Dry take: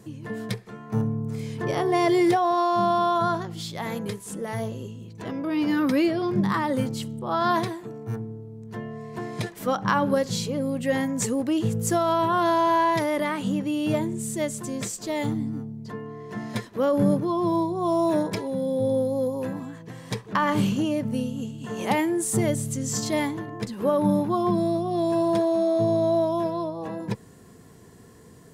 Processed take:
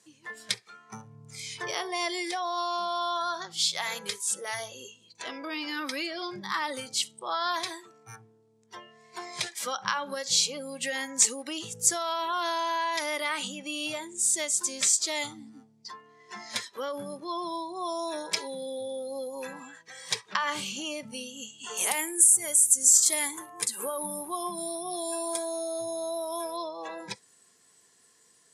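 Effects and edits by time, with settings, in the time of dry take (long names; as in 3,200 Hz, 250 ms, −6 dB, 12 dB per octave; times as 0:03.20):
0:21.77–0:26.57: high shelf with overshoot 7,100 Hz +13.5 dB, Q 1.5
whole clip: downward compressor 6 to 1, threshold −26 dBFS; meter weighting curve ITU-R 468; noise reduction from a noise print of the clip's start 13 dB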